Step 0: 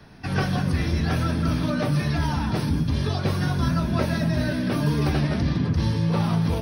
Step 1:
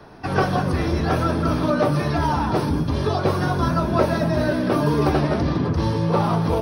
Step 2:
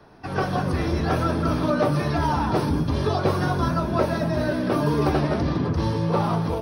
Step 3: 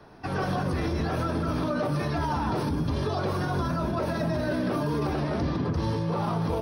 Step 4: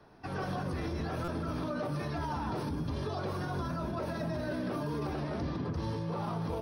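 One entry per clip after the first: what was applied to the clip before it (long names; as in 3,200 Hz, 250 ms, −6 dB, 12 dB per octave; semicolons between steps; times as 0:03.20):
flat-topped bell 650 Hz +9 dB 2.4 octaves
automatic gain control gain up to 6.5 dB; level −6.5 dB
brickwall limiter −19.5 dBFS, peak gain reduction 10.5 dB
buffer that repeats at 0:01.24, samples 256, times 6; level −7.5 dB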